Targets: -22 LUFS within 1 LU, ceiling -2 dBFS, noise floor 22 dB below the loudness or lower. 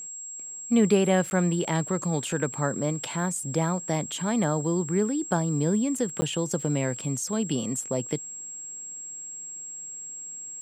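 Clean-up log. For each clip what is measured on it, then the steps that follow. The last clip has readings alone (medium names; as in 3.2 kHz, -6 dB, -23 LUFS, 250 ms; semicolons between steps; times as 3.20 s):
dropouts 2; longest dropout 10 ms; steady tone 7.6 kHz; tone level -36 dBFS; loudness -27.5 LUFS; peak level -9.0 dBFS; loudness target -22.0 LUFS
-> interpolate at 1.30/6.21 s, 10 ms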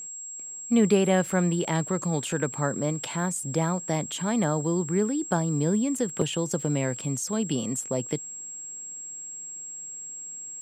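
dropouts 0; steady tone 7.6 kHz; tone level -36 dBFS
-> band-stop 7.6 kHz, Q 30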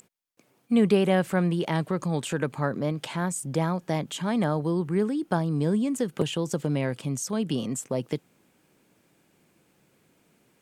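steady tone not found; loudness -27.0 LUFS; peak level -9.5 dBFS; loudness target -22.0 LUFS
-> trim +5 dB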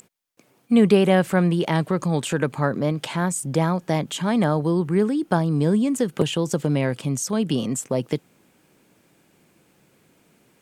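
loudness -22.0 LUFS; peak level -4.5 dBFS; noise floor -62 dBFS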